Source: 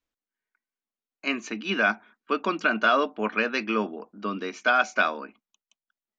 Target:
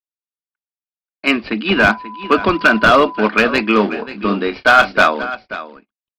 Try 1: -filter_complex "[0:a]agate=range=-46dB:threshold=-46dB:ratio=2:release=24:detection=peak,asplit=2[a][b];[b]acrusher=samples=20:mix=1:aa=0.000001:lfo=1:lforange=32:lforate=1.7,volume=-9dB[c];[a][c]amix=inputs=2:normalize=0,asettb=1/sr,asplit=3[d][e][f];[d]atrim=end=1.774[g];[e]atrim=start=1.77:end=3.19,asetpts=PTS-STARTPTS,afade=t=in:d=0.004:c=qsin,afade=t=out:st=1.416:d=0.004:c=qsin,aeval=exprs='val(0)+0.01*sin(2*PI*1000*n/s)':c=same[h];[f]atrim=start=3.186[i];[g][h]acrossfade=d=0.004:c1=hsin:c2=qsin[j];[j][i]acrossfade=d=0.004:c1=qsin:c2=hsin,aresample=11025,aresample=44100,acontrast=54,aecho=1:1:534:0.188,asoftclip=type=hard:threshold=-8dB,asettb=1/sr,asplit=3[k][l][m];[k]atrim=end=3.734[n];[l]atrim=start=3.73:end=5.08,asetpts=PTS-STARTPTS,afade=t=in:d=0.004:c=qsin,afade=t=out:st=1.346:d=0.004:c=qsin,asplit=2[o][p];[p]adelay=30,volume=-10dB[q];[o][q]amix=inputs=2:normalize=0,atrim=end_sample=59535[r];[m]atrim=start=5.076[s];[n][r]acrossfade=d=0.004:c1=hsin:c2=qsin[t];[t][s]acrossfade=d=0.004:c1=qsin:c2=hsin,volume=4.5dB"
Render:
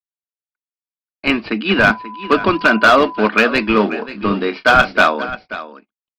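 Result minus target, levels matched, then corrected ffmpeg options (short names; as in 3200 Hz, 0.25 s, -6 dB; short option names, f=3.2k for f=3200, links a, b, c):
decimation with a swept rate: distortion +4 dB
-filter_complex "[0:a]agate=range=-46dB:threshold=-46dB:ratio=2:release=24:detection=peak,asplit=2[a][b];[b]acrusher=samples=20:mix=1:aa=0.000001:lfo=1:lforange=32:lforate=2.9,volume=-9dB[c];[a][c]amix=inputs=2:normalize=0,asettb=1/sr,asplit=3[d][e][f];[d]atrim=end=1.774[g];[e]atrim=start=1.77:end=3.19,asetpts=PTS-STARTPTS,afade=t=in:d=0.004:c=qsin,afade=t=out:st=1.416:d=0.004:c=qsin,aeval=exprs='val(0)+0.01*sin(2*PI*1000*n/s)':c=same[h];[f]atrim=start=3.186[i];[g][h]acrossfade=d=0.004:c1=hsin:c2=qsin[j];[j][i]acrossfade=d=0.004:c1=qsin:c2=hsin,aresample=11025,aresample=44100,acontrast=54,aecho=1:1:534:0.188,asoftclip=type=hard:threshold=-8dB,asettb=1/sr,asplit=3[k][l][m];[k]atrim=end=3.734[n];[l]atrim=start=3.73:end=5.08,asetpts=PTS-STARTPTS,afade=t=in:d=0.004:c=qsin,afade=t=out:st=1.346:d=0.004:c=qsin,asplit=2[o][p];[p]adelay=30,volume=-10dB[q];[o][q]amix=inputs=2:normalize=0,atrim=end_sample=59535[r];[m]atrim=start=5.076[s];[n][r]acrossfade=d=0.004:c1=hsin:c2=qsin[t];[t][s]acrossfade=d=0.004:c1=qsin:c2=hsin,volume=4.5dB"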